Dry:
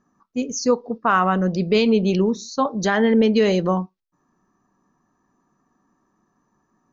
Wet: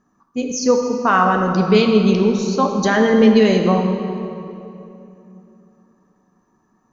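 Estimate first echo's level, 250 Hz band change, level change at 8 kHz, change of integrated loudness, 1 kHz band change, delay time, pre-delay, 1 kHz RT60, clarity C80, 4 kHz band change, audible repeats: none, +4.5 dB, n/a, +4.0 dB, +4.0 dB, none, 3 ms, 2.7 s, 5.5 dB, +3.5 dB, none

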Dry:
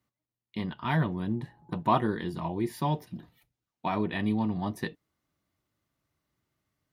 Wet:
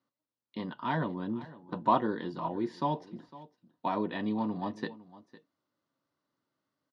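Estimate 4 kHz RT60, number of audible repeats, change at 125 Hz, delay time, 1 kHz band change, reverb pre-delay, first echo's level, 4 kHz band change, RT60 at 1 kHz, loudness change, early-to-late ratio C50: none, 1, -8.5 dB, 0.506 s, 0.0 dB, none, -18.5 dB, -4.5 dB, none, -2.5 dB, none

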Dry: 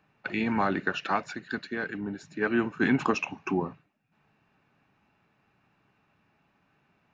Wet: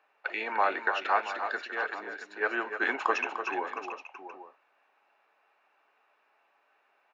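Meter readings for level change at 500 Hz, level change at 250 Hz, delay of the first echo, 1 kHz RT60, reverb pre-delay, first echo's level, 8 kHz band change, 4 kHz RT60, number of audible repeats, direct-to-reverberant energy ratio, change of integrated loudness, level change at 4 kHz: -2.0 dB, -15.0 dB, 0.298 s, none, none, -8.5 dB, n/a, none, 3, none, -1.5 dB, -1.0 dB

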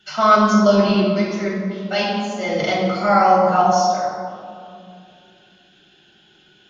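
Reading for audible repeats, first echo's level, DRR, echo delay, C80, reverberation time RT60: none, none, -6.0 dB, none, 1.5 dB, 2.4 s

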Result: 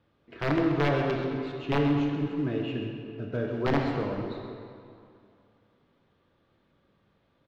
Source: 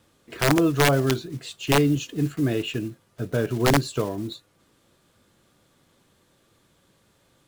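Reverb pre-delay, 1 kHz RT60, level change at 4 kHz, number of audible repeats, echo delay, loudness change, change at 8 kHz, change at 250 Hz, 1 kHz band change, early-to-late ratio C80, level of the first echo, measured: 19 ms, 2.5 s, -11.0 dB, 1, 0.132 s, -5.5 dB, under -25 dB, -4.0 dB, -5.0 dB, 3.0 dB, -10.5 dB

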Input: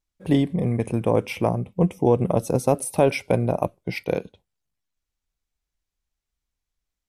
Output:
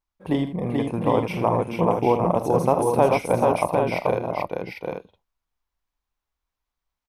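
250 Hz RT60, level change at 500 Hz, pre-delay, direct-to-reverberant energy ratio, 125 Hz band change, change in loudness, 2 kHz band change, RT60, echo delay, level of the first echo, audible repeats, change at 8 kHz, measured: none, +2.0 dB, none, none, -3.0 dB, +0.5 dB, +1.0 dB, none, 45 ms, -14.0 dB, 5, -5.0 dB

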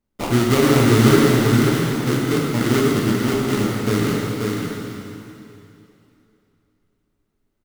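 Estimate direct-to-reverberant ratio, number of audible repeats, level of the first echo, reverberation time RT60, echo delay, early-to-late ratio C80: -4.5 dB, 1, -4.0 dB, 2.8 s, 0.538 s, -2.0 dB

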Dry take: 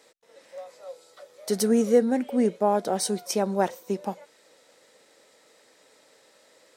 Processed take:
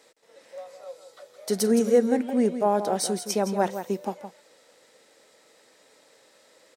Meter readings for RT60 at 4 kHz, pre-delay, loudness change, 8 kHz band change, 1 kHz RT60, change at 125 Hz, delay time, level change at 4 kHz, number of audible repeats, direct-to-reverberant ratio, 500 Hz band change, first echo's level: none, none, +0.5 dB, +0.5 dB, none, 0.0 dB, 0.166 s, +0.5 dB, 1, none, +0.5 dB, -10.0 dB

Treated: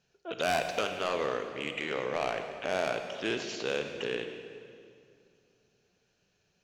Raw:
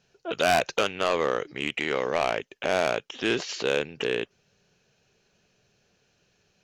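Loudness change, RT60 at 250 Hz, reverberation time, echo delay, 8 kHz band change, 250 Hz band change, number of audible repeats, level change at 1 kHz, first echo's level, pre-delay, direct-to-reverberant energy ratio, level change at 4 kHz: -6.0 dB, 2.7 s, 2.3 s, none, -6.0 dB, -6.0 dB, none, -6.0 dB, none, 31 ms, 6.0 dB, -6.0 dB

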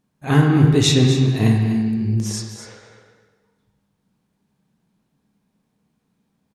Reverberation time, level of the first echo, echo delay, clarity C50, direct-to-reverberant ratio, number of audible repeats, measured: 1.3 s, -11.0 dB, 0.249 s, 3.5 dB, 1.0 dB, 1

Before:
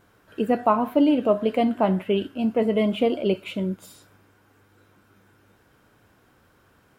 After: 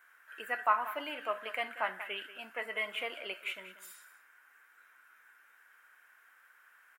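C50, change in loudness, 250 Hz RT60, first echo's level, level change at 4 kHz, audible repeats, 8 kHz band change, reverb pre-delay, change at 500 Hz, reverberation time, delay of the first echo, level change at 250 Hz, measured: none, -13.0 dB, none, -14.5 dB, -5.0 dB, 1, n/a, none, -19.0 dB, none, 0.187 s, -32.5 dB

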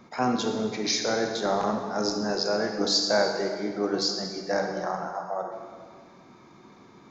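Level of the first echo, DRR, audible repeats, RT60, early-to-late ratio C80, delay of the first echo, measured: none, 3.0 dB, none, 1.7 s, 6.0 dB, none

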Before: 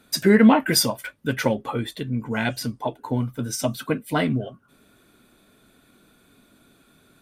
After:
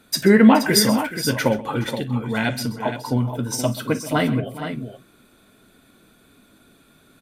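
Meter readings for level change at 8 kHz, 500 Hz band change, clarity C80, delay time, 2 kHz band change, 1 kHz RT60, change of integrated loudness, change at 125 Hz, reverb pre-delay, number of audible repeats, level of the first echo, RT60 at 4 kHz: +2.5 dB, +2.5 dB, none, 41 ms, +2.5 dB, none, +2.5 dB, +3.0 dB, none, 4, -18.0 dB, none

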